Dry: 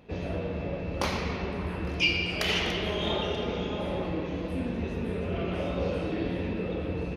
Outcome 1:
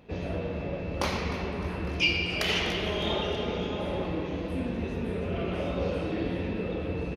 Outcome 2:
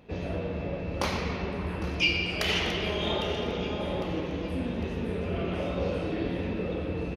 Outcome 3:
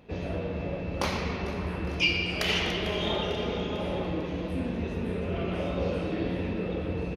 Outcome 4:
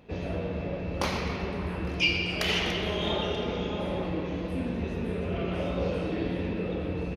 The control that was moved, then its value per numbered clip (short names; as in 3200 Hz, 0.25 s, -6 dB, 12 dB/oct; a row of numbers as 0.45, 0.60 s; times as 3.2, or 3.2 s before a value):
feedback echo, time: 0.305, 0.804, 0.448, 0.129 s